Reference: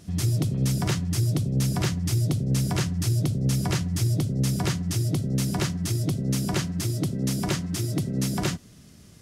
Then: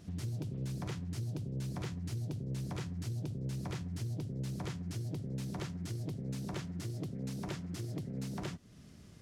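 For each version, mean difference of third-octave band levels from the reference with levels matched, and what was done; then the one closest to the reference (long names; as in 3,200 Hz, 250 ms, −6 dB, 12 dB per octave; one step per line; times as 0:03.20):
3.0 dB: high-shelf EQ 4,700 Hz −7.5 dB
downward compressor 2 to 1, threshold −39 dBFS, peak gain reduction 10.5 dB
highs frequency-modulated by the lows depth 0.39 ms
level −4.5 dB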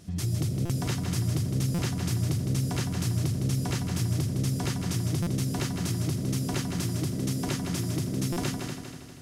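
5.5 dB: in parallel at 0 dB: downward compressor, threshold −30 dBFS, peak gain reduction 10 dB
on the sum: echo machine with several playback heads 80 ms, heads second and third, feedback 53%, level −7 dB
buffer that repeats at 0:00.65/0:01.74/0:05.22/0:08.32, samples 256, times 7
level −8 dB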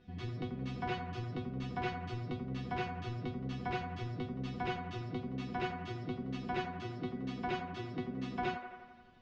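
10.5 dB: low-pass filter 3,300 Hz 24 dB per octave
resonators tuned to a chord B3 fifth, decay 0.21 s
delay with a band-pass on its return 86 ms, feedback 66%, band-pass 960 Hz, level −6 dB
level +6.5 dB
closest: first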